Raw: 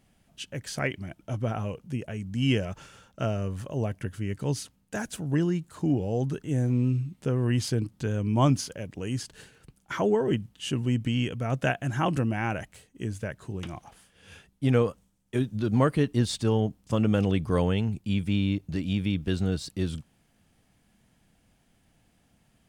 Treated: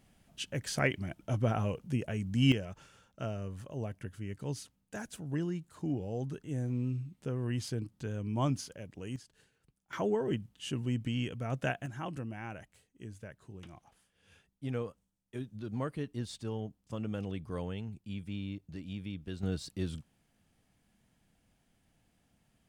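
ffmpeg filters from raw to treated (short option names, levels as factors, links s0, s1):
-af "asetnsamples=n=441:p=0,asendcmd='2.52 volume volume -9dB;9.16 volume volume -17.5dB;9.93 volume volume -7dB;11.86 volume volume -13.5dB;19.43 volume volume -6.5dB',volume=0.944"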